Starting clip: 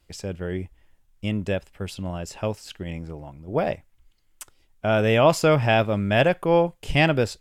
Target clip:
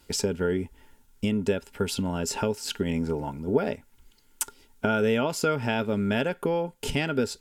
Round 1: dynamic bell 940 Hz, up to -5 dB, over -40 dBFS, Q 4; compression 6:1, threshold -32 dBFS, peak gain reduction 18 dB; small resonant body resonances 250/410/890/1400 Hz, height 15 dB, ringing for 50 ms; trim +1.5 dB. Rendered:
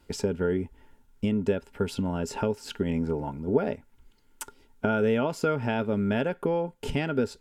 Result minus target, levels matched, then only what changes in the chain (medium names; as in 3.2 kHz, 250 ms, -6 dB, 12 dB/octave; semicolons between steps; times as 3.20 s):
4 kHz band -6.5 dB
add after compression: treble shelf 2.8 kHz +11 dB